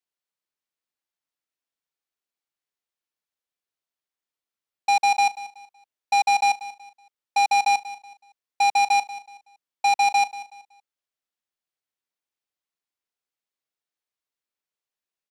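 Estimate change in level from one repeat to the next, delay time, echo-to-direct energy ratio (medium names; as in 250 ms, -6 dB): -10.0 dB, 187 ms, -15.5 dB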